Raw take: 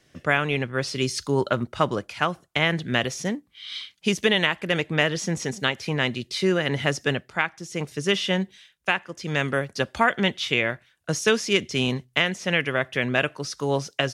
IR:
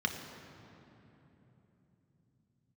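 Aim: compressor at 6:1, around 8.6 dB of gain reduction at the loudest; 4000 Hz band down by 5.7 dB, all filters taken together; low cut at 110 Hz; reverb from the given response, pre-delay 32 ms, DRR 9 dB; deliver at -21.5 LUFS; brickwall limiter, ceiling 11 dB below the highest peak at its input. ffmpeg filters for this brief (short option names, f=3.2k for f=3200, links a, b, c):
-filter_complex "[0:a]highpass=110,equalizer=f=4k:t=o:g=-9,acompressor=threshold=-25dB:ratio=6,alimiter=limit=-21.5dB:level=0:latency=1,asplit=2[a][b];[1:a]atrim=start_sample=2205,adelay=32[c];[b][c]afir=irnorm=-1:irlink=0,volume=-15.5dB[d];[a][d]amix=inputs=2:normalize=0,volume=12dB"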